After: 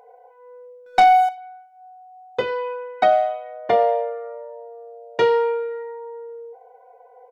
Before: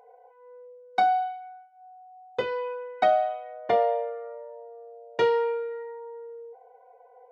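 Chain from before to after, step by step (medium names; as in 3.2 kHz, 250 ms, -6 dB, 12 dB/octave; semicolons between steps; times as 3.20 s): 0.86–1.29 s: waveshaping leveller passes 2; speakerphone echo 90 ms, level -19 dB; trim +5 dB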